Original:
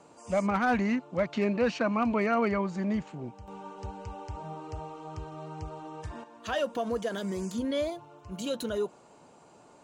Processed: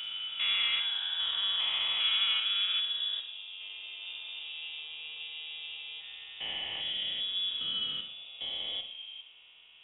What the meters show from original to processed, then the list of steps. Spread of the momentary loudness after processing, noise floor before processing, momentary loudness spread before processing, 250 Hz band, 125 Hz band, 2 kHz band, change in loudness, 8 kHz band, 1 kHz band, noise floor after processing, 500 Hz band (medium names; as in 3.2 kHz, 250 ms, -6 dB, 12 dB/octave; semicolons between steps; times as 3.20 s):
15 LU, -56 dBFS, 15 LU, under -30 dB, under -25 dB, -1.0 dB, 0.0 dB, under -30 dB, -15.0 dB, -56 dBFS, -28.0 dB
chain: spectrogram pixelated in time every 400 ms; frequency inversion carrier 3.6 kHz; Schroeder reverb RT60 0.59 s, combs from 33 ms, DRR 7 dB